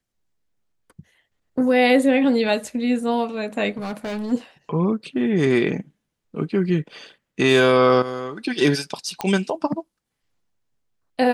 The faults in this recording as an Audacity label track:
3.770000	4.330000	clipping −25 dBFS
9.210000	9.210000	click −10 dBFS

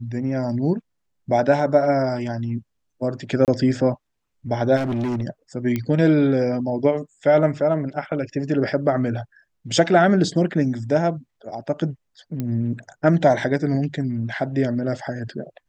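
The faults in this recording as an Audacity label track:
3.450000	3.480000	drop-out 28 ms
4.760000	5.230000	clipping −21 dBFS
5.760000	5.760000	click −12 dBFS
12.400000	12.400000	click −14 dBFS

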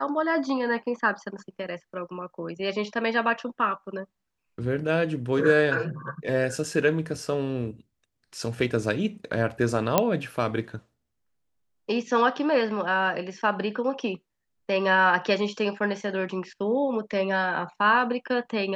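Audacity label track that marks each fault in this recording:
9.980000	9.980000	click −4 dBFS

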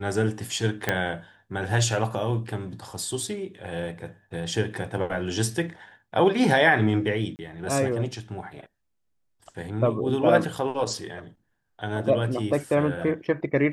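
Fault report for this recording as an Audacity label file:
0.890000	0.890000	click −8 dBFS
7.360000	7.390000	drop-out 29 ms

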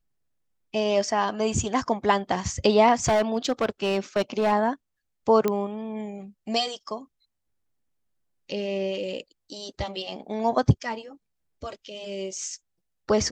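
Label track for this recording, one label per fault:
3.050000	4.530000	clipping −18 dBFS
5.480000	5.480000	click −11 dBFS

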